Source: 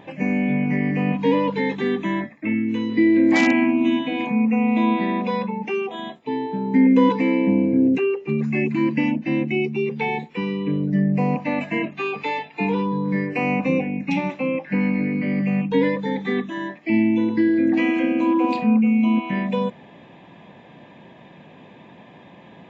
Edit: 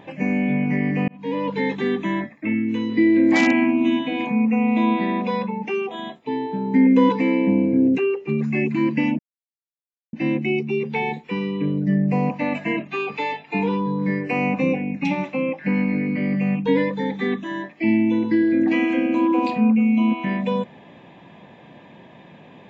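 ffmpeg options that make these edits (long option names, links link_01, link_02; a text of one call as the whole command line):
ffmpeg -i in.wav -filter_complex "[0:a]asplit=3[link_01][link_02][link_03];[link_01]atrim=end=1.08,asetpts=PTS-STARTPTS,afade=type=out:start_time=1.076:duration=0.004:curve=hsin[link_04];[link_02]atrim=start=1.08:end=9.19,asetpts=PTS-STARTPTS,afade=type=in:duration=0.54,afade=type=out:start_time=8.106:duration=0.004:curve=hsin,apad=pad_dur=0.94[link_05];[link_03]atrim=start=9.19,asetpts=PTS-STARTPTS,afade=type=in:duration=0.004:curve=hsin[link_06];[link_04][link_05][link_06]concat=n=3:v=0:a=1" out.wav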